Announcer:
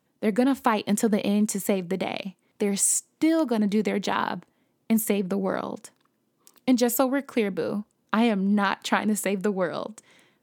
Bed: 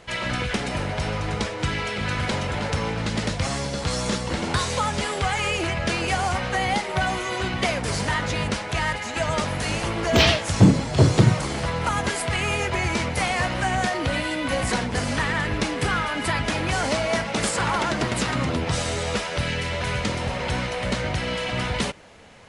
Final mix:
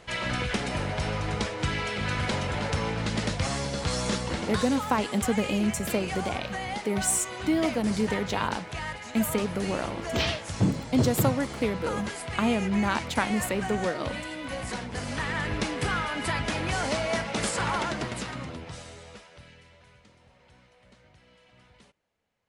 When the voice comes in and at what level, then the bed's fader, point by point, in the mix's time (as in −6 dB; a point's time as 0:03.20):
4.25 s, −3.5 dB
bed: 0:04.25 −3 dB
0:04.79 −10 dB
0:14.83 −10 dB
0:15.49 −4.5 dB
0:17.77 −4.5 dB
0:20.02 −32 dB